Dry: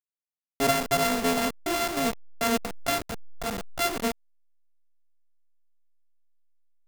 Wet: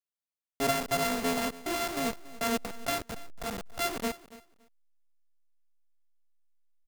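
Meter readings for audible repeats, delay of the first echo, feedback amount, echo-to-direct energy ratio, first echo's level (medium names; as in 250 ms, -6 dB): 2, 282 ms, 18%, -18.5 dB, -18.5 dB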